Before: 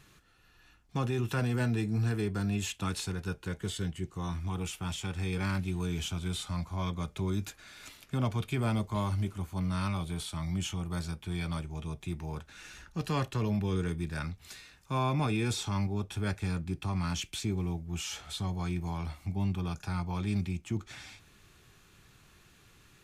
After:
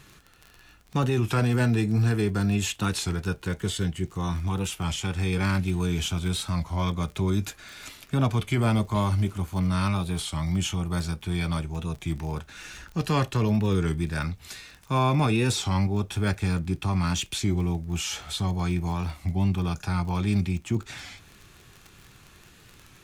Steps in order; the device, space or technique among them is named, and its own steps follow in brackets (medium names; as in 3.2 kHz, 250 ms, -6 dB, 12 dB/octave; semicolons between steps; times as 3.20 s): warped LP (warped record 33 1/3 rpm, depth 100 cents; crackle 25 per s -41 dBFS; pink noise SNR 43 dB); trim +7 dB